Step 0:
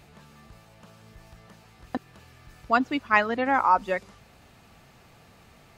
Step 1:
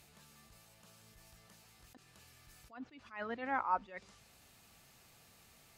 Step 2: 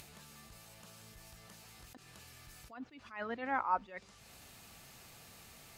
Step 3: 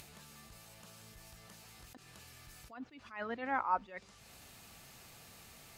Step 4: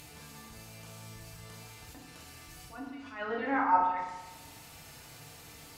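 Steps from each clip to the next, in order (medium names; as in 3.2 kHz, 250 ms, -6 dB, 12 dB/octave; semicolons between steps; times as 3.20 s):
pre-emphasis filter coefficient 0.8; low-pass that closes with the level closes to 2.2 kHz, closed at -32 dBFS; attacks held to a fixed rise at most 140 dB/s; trim +1 dB
upward compressor, threshold -49 dBFS; trim +1 dB
no audible change
FDN reverb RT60 1.1 s, low-frequency decay 1×, high-frequency decay 0.75×, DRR -4 dB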